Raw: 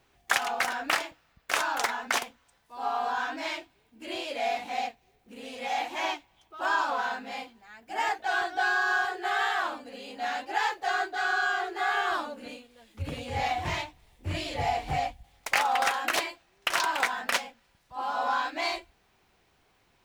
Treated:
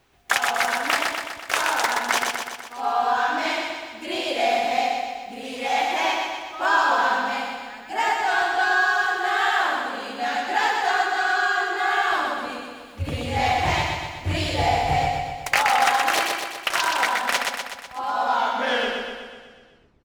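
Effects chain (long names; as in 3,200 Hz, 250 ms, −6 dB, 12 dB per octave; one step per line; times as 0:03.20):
turntable brake at the end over 1.79 s
speech leveller within 4 dB 2 s
repeating echo 124 ms, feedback 59%, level −3.5 dB
level +5 dB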